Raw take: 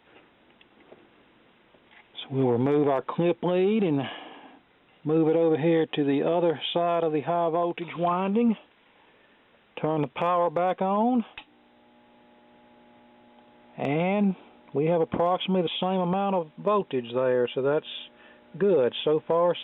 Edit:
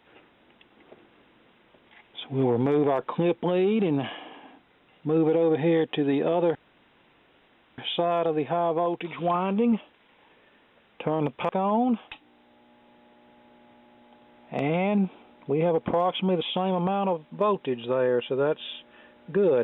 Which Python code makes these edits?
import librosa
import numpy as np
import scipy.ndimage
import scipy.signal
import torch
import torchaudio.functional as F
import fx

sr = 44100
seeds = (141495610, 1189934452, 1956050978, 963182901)

y = fx.edit(x, sr, fx.insert_room_tone(at_s=6.55, length_s=1.23),
    fx.cut(start_s=10.26, length_s=0.49), tone=tone)